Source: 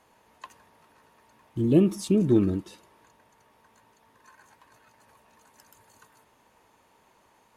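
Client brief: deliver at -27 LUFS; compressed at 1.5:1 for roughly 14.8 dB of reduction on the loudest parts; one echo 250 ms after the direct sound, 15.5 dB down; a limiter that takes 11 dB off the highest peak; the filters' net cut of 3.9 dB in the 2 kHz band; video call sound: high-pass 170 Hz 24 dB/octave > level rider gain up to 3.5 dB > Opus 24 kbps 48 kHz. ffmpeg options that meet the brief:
-af "equalizer=f=2000:t=o:g=-5.5,acompressor=threshold=0.00126:ratio=1.5,alimiter=level_in=3.55:limit=0.0631:level=0:latency=1,volume=0.282,highpass=f=170:w=0.5412,highpass=f=170:w=1.3066,aecho=1:1:250:0.168,dynaudnorm=m=1.5,volume=14.1" -ar 48000 -c:a libopus -b:a 24k

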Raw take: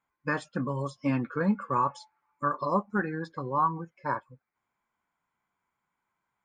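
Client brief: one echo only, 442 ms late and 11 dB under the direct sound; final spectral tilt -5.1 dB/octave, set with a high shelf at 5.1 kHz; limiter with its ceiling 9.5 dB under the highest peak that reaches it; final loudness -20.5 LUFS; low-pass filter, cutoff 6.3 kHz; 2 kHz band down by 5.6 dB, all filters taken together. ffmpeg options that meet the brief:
-af "lowpass=6300,equalizer=f=2000:t=o:g=-7.5,highshelf=f=5100:g=-3.5,alimiter=level_in=1.19:limit=0.0631:level=0:latency=1,volume=0.841,aecho=1:1:442:0.282,volume=6.31"

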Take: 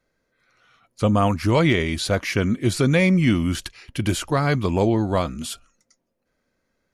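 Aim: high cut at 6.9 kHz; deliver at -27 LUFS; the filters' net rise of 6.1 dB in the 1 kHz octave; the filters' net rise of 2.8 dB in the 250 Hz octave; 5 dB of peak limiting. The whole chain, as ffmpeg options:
-af "lowpass=6900,equalizer=f=250:t=o:g=3.5,equalizer=f=1000:t=o:g=7.5,volume=0.447,alimiter=limit=0.168:level=0:latency=1"

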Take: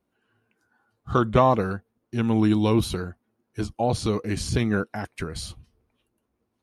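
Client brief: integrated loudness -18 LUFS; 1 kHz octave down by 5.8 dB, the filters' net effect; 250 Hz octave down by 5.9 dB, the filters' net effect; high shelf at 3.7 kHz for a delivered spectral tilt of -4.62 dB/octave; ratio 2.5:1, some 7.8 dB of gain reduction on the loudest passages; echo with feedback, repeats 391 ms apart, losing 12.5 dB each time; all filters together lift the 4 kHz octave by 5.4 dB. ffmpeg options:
-af "equalizer=f=250:t=o:g=-7.5,equalizer=f=1000:t=o:g=-7.5,highshelf=f=3700:g=3.5,equalizer=f=4000:t=o:g=4.5,acompressor=threshold=0.0355:ratio=2.5,aecho=1:1:391|782|1173:0.237|0.0569|0.0137,volume=5.31"

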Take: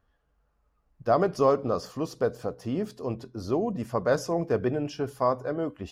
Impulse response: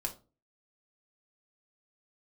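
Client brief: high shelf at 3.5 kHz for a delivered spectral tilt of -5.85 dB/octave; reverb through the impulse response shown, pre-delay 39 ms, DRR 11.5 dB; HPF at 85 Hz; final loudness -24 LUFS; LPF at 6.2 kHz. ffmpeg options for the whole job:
-filter_complex "[0:a]highpass=85,lowpass=6200,highshelf=f=3500:g=5,asplit=2[s0][s1];[1:a]atrim=start_sample=2205,adelay=39[s2];[s1][s2]afir=irnorm=-1:irlink=0,volume=0.237[s3];[s0][s3]amix=inputs=2:normalize=0,volume=1.5"

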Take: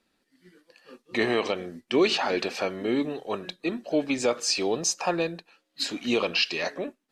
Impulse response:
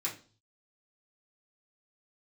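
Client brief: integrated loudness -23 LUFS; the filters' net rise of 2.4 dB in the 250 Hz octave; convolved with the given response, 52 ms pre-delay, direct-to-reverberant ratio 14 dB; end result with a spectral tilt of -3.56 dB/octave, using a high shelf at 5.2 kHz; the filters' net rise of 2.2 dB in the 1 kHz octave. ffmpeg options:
-filter_complex "[0:a]equalizer=f=250:t=o:g=3,equalizer=f=1000:t=o:g=3,highshelf=f=5200:g=-4.5,asplit=2[s0][s1];[1:a]atrim=start_sample=2205,adelay=52[s2];[s1][s2]afir=irnorm=-1:irlink=0,volume=0.133[s3];[s0][s3]amix=inputs=2:normalize=0,volume=1.41"

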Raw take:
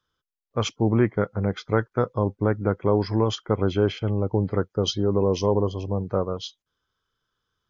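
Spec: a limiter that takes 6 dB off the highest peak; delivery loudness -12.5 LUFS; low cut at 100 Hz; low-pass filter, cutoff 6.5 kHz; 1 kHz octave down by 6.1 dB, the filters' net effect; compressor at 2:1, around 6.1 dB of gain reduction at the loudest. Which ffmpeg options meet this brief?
-af "highpass=100,lowpass=6500,equalizer=f=1000:t=o:g=-8,acompressor=threshold=0.0398:ratio=2,volume=10,alimiter=limit=0.944:level=0:latency=1"

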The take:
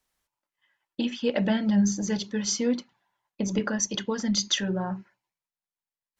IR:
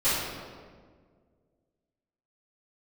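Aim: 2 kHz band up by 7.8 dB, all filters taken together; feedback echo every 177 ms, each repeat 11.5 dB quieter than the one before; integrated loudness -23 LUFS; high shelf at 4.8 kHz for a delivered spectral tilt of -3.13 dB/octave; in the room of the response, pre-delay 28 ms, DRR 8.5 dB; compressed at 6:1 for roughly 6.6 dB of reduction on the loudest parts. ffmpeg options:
-filter_complex "[0:a]equalizer=f=2000:t=o:g=9,highshelf=f=4800:g=4,acompressor=threshold=0.0631:ratio=6,aecho=1:1:177|354|531:0.266|0.0718|0.0194,asplit=2[s0][s1];[1:a]atrim=start_sample=2205,adelay=28[s2];[s1][s2]afir=irnorm=-1:irlink=0,volume=0.075[s3];[s0][s3]amix=inputs=2:normalize=0,volume=1.88"

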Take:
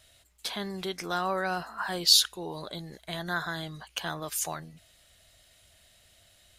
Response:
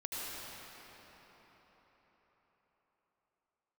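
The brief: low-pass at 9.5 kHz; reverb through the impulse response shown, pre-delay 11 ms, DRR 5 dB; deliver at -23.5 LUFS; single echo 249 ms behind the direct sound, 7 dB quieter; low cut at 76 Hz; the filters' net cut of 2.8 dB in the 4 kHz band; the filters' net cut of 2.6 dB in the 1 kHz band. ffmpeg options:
-filter_complex "[0:a]highpass=76,lowpass=9500,equalizer=f=1000:t=o:g=-3.5,equalizer=f=4000:t=o:g=-3,aecho=1:1:249:0.447,asplit=2[s0][s1];[1:a]atrim=start_sample=2205,adelay=11[s2];[s1][s2]afir=irnorm=-1:irlink=0,volume=0.398[s3];[s0][s3]amix=inputs=2:normalize=0,volume=2.11"

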